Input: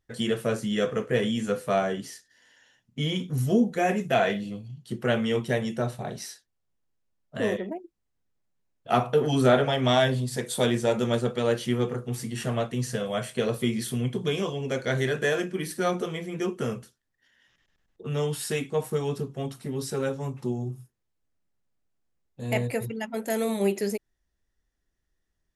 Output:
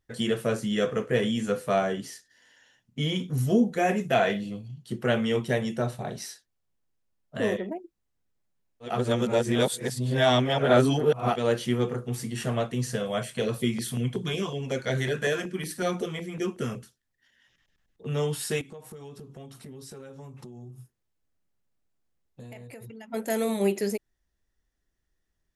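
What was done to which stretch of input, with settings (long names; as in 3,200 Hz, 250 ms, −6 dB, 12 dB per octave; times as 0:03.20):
0:08.92–0:11.34: reverse, crossfade 0.24 s
0:13.23–0:18.09: auto-filter notch saw down 5.4 Hz 250–1,600 Hz
0:18.61–0:23.12: downward compressor 12 to 1, threshold −40 dBFS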